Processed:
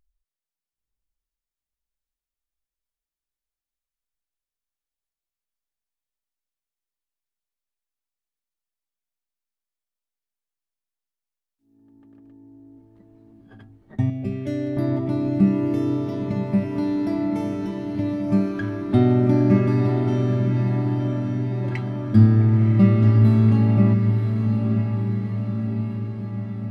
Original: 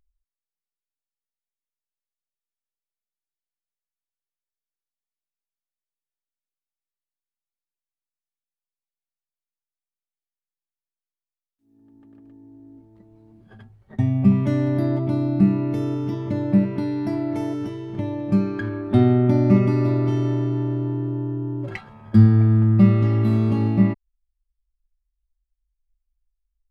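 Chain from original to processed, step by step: 14.10–14.77 s: static phaser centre 420 Hz, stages 4; echo that smears into a reverb 997 ms, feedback 64%, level -6 dB; trim -1 dB

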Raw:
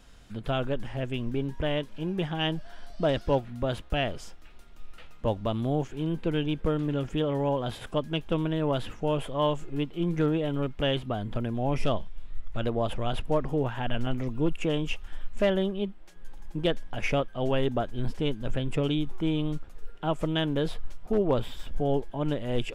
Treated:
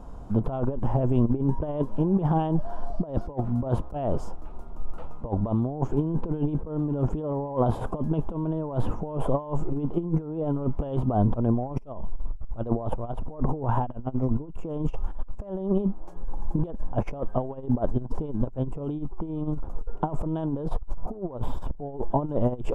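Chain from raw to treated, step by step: FFT filter 530 Hz 0 dB, 1 kHz +3 dB, 1.8 kHz -22 dB, 3.8 kHz -25 dB, 6.6 kHz -19 dB; compressor with a negative ratio -32 dBFS, ratio -0.5; trim +8 dB

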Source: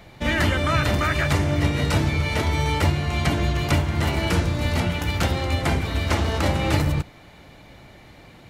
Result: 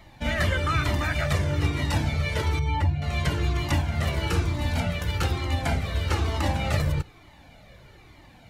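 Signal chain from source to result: 2.59–3.02 s: spectral contrast enhancement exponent 1.5; Shepard-style flanger falling 1.1 Hz

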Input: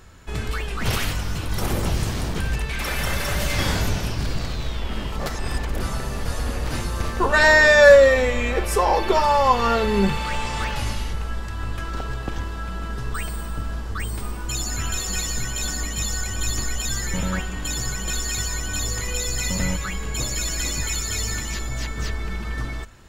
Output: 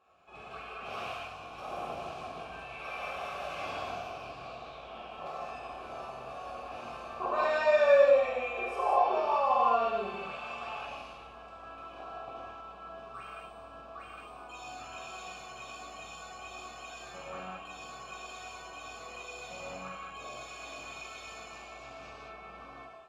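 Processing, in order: vowel filter a; gated-style reverb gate 250 ms flat, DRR -7.5 dB; trim -6 dB

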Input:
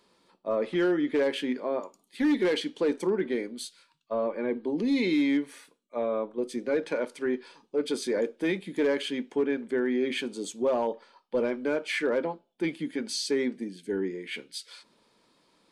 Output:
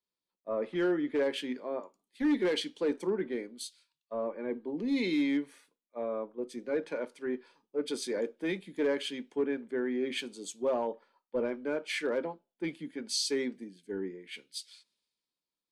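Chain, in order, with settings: three bands expanded up and down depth 70%; trim -5 dB

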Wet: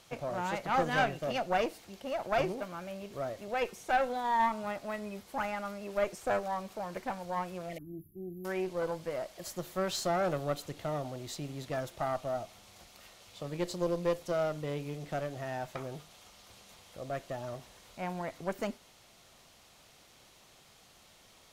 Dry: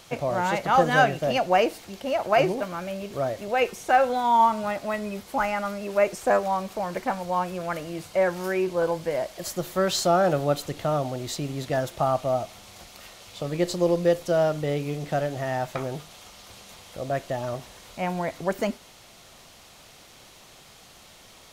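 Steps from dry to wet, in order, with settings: 7.78–8.45 s: brick-wall FIR band-stop 410–11000 Hz; valve stage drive 13 dB, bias 0.7; 7.69–8.07 s: spectral replace 810–1800 Hz both; trim -5.5 dB

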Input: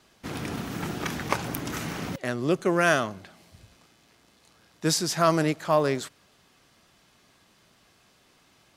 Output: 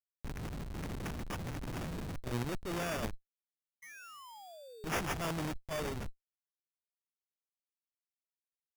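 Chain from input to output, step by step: send-on-delta sampling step -31.5 dBFS; Schmitt trigger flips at -33 dBFS; bass shelf 140 Hz +5 dB; compressor with a negative ratio -32 dBFS, ratio -0.5; painted sound fall, 3.82–4.89 s, 380–2000 Hz -47 dBFS; treble shelf 9 kHz +9.5 dB; sample-rate reducer 4.1 kHz, jitter 0%; trim -4.5 dB

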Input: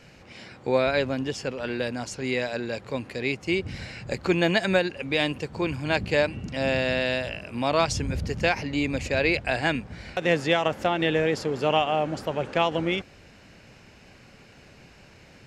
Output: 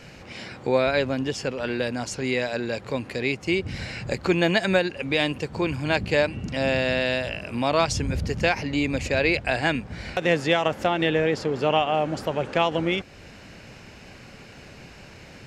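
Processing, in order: 11.09–11.94 s: treble shelf 8.8 kHz -11 dB; in parallel at +0.5 dB: compression, threshold -37 dBFS, peak gain reduction 19.5 dB

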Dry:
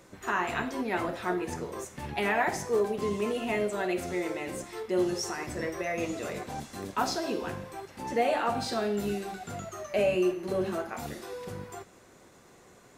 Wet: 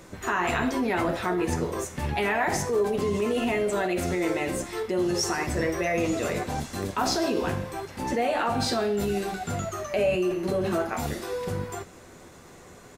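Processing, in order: bass shelf 92 Hz +7.5 dB; in parallel at -1.5 dB: compressor with a negative ratio -32 dBFS, ratio -0.5; on the sum: doubling 12 ms -12 dB

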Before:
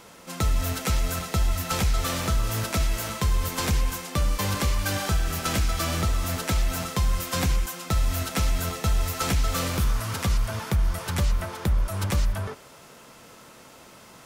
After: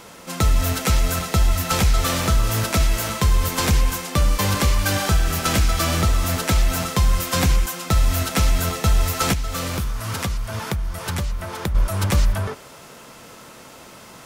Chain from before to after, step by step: 9.33–11.75 s: compression, threshold -28 dBFS, peak gain reduction 9 dB; trim +6 dB

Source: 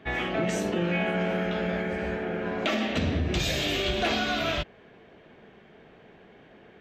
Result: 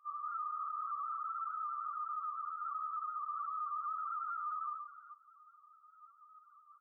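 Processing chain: sorted samples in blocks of 128 samples; multi-tap echo 196/511/522 ms -3/-12/-18 dB; reverberation RT60 0.25 s, pre-delay 5 ms, DRR 6.5 dB; LPC vocoder at 8 kHz whisper; resonant high-pass 1.2 kHz, resonance Q 8.5; loudest bins only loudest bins 2; 0.39–0.90 s: doubling 32 ms -2 dB; flange 0.31 Hz, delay 1.2 ms, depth 8.1 ms, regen +75%; peak limiter -30 dBFS, peak gain reduction 10.5 dB; trim -4 dB

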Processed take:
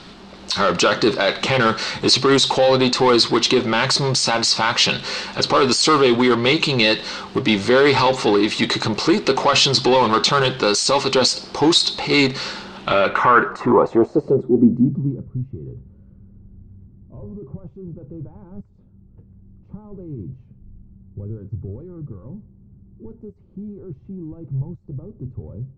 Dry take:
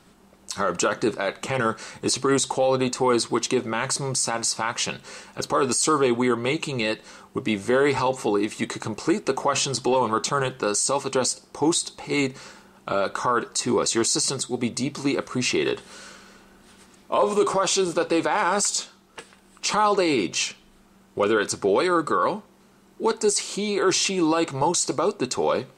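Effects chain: power-law waveshaper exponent 0.7; level rider gain up to 3.5 dB; low-pass sweep 4.2 kHz -> 100 Hz, 12.73–15.38 s

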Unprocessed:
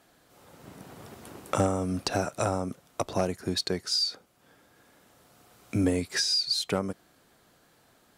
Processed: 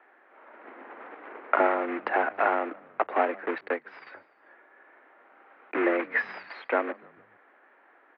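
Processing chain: block-companded coder 3-bit; tilt EQ +3.5 dB/octave; mistuned SSB +72 Hz 190–2000 Hz; on a send: frequency-shifting echo 147 ms, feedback 49%, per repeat -52 Hz, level -23 dB; 3.58–4.07 s: on the sum: upward expansion 1.5:1, over -48 dBFS; trim +6 dB

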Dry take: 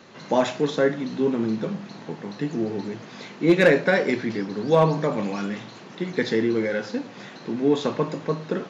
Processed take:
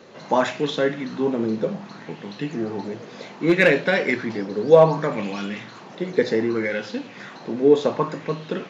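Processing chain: 6.24–6.64 s: band-stop 3.3 kHz, Q 7.3; sweeping bell 0.65 Hz 460–3200 Hz +9 dB; trim -1 dB

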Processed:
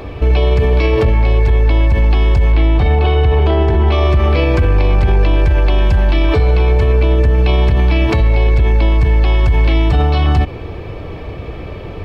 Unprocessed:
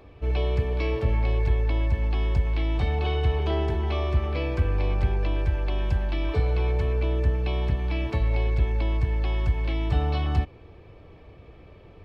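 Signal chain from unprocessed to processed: 2.52–3.92 s: low-pass 2.5 kHz 6 dB/octave; loudness maximiser +25.5 dB; trim -4 dB

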